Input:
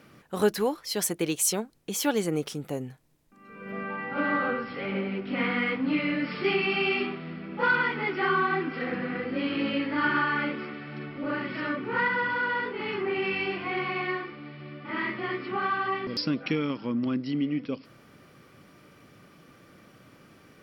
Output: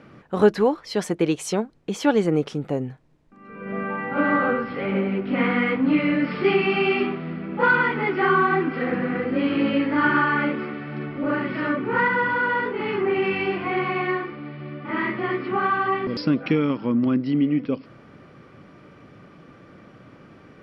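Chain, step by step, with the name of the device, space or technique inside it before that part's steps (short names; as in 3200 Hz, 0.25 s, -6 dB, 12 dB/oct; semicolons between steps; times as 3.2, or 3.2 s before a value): through cloth (LPF 7800 Hz; high shelf 3500 Hz -15.5 dB); gain +7.5 dB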